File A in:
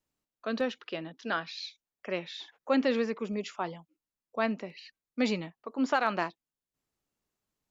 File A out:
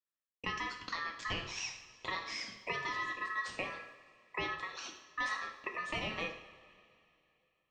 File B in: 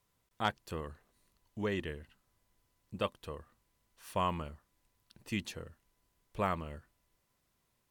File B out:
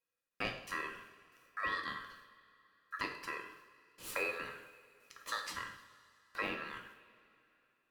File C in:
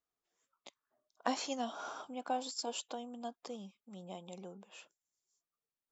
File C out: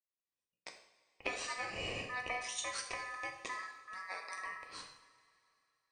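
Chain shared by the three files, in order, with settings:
high-pass filter 140 Hz 6 dB per octave
noise gate with hold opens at −58 dBFS
thirty-one-band graphic EQ 400 Hz +4 dB, 630 Hz −11 dB, 1,000 Hz +6 dB, 6,300 Hz −3 dB
downward compressor 4 to 1, threshold −43 dBFS
ring modulation 1,500 Hz
coupled-rooms reverb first 0.65 s, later 2.9 s, from −17 dB, DRR 2.5 dB
level +7.5 dB

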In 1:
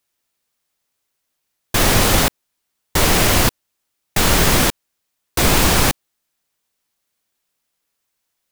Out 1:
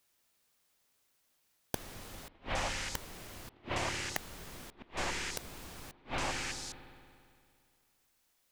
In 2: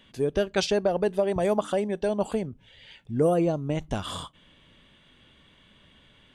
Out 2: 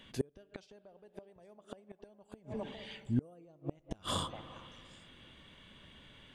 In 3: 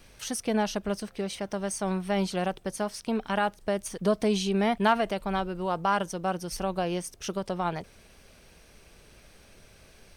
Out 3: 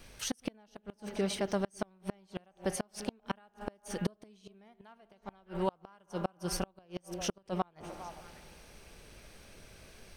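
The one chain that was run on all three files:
echo through a band-pass that steps 202 ms, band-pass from 310 Hz, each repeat 1.4 octaves, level −11 dB
spring reverb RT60 2.3 s, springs 57 ms, chirp 45 ms, DRR 16 dB
gate with flip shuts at −19 dBFS, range −34 dB

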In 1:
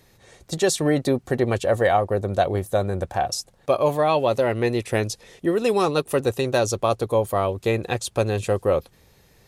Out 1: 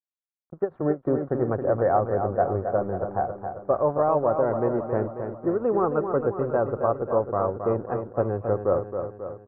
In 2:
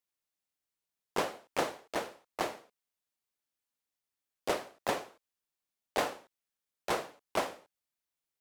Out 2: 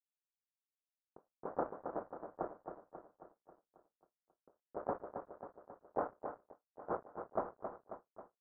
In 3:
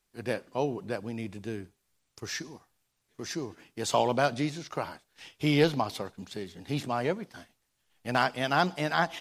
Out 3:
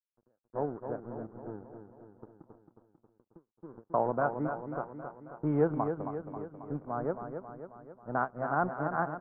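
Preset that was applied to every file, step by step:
low-pass that shuts in the quiet parts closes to 500 Hz, open at −17 dBFS
high-pass filter 87 Hz 12 dB per octave
dead-zone distortion −40.5 dBFS
elliptic low-pass filter 1,400 Hz, stop band 80 dB
repeating echo 270 ms, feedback 57%, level −7.5 dB
every ending faded ahead of time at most 390 dB per second
level −2 dB

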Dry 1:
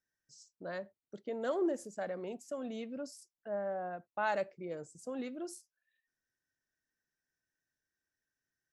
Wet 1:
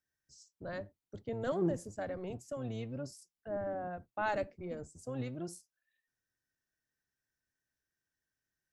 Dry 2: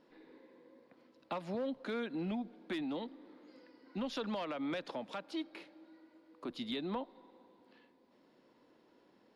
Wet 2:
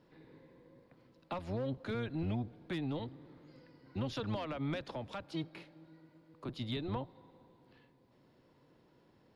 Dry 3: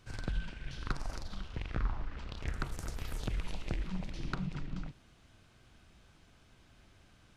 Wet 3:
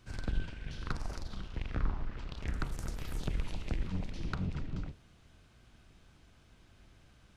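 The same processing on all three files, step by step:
sub-octave generator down 1 octave, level +1 dB
level −1 dB

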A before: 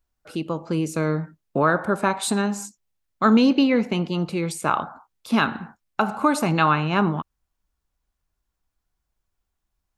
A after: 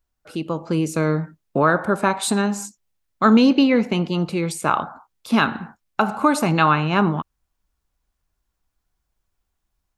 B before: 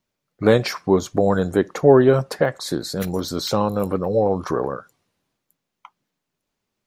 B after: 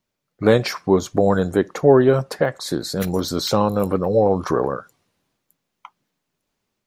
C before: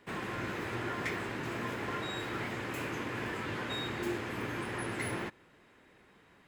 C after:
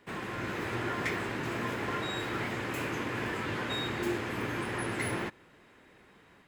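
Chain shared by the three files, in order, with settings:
automatic gain control gain up to 3 dB

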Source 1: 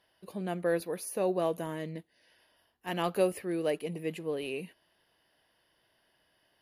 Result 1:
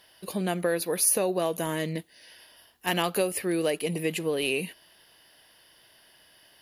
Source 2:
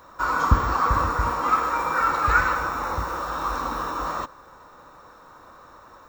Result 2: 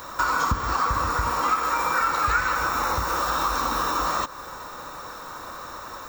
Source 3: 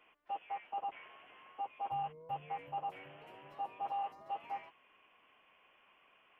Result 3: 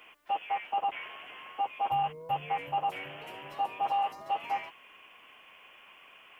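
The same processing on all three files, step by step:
downward compressor 4 to 1, threshold −33 dBFS
high-shelf EQ 2,500 Hz +10.5 dB
level +8.5 dB

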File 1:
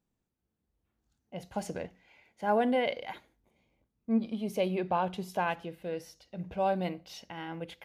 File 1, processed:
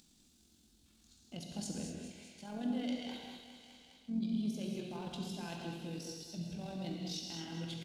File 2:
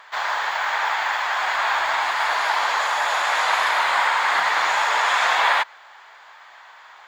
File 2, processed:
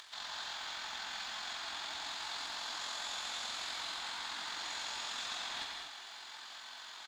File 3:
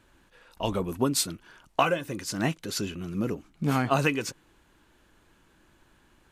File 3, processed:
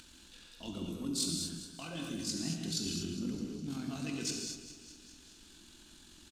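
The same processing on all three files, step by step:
mains-hum notches 60/120/180 Hz
reversed playback
downward compressor 6 to 1, threshold −36 dBFS
reversed playback
high-shelf EQ 8,900 Hz −11.5 dB
on a send: repeating echo 205 ms, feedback 52%, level −12.5 dB
on the sum: leveller curve on the samples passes 1
octave-band graphic EQ 125/250/500/1,000/2,000/4,000/8,000 Hz −6/+7/−11/−9/−10/+7/+7 dB
amplitude modulation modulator 44 Hz, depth 35%
upward compression, threshold −56 dBFS
reverb whose tail is shaped and stops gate 270 ms flat, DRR 0 dB
one half of a high-frequency compander encoder only
level −1.5 dB

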